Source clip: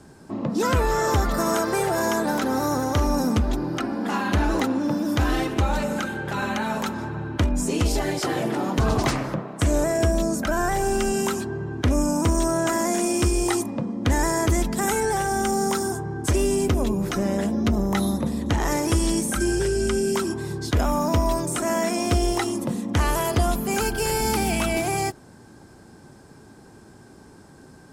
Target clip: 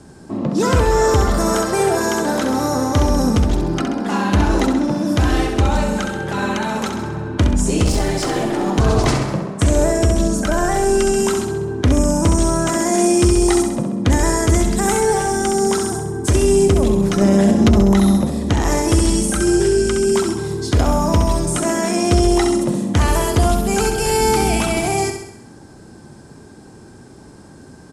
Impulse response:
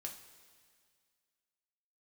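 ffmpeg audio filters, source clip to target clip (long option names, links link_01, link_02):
-filter_complex "[0:a]lowpass=frequency=11000:width=0.5412,lowpass=frequency=11000:width=1.3066,equalizer=frequency=1600:width_type=o:width=2.6:gain=-3.5,asettb=1/sr,asplit=3[link_01][link_02][link_03];[link_01]atrim=end=7.844[link_04];[link_02]atrim=start=7.84:end=8.67,asetpts=PTS-STARTPTS,afade=type=in:duration=0.004:curve=qsin,afade=type=out:start_time=0.826:duration=0.004:curve=qsin,aeval=exprs='clip(val(0),-1,0.0668)':channel_layout=same[link_05];[link_03]atrim=start=8.666[link_06];[link_04][link_05]acrossfade=duration=0.004:curve1=hsin:curve2=qsin[link_07];[link_07][link_06]acrossfade=duration=0.004:curve1=qsin:curve2=hsin,asettb=1/sr,asplit=3[link_08][link_09][link_10];[link_08]atrim=end=17.214[link_11];[link_09]atrim=start=17.21:end=17.94,asetpts=PTS-STARTPTS,afade=type=in:duration=0.004:curve=qsin,afade=type=out:start_time=0.726:duration=0.004:curve=qsin,acontrast=66[link_12];[link_10]atrim=start=17.936[link_13];[link_11][link_12]acrossfade=duration=0.004:curve1=hsin:curve2=qsin[link_14];[link_14][link_13]acrossfade=duration=0.004:curve1=qsin:curve2=hsin,asplit=2[link_15][link_16];[link_16]aecho=0:1:66|132|198|264|330|396|462:0.473|0.26|0.143|0.0787|0.0433|0.0238|0.0131[link_17];[link_15][link_17]amix=inputs=2:normalize=0,alimiter=level_in=9.5dB:limit=-1dB:release=50:level=0:latency=1,volume=-3.5dB"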